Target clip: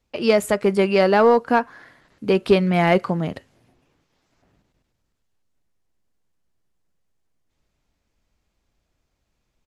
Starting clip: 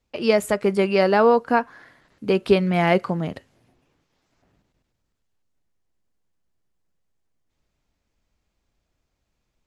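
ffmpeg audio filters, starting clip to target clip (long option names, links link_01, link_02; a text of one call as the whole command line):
ffmpeg -i in.wav -filter_complex "[0:a]asplit=2[link_01][link_02];[link_02]asoftclip=type=hard:threshold=-14dB,volume=-8dB[link_03];[link_01][link_03]amix=inputs=2:normalize=0,aresample=32000,aresample=44100,volume=-1dB" out.wav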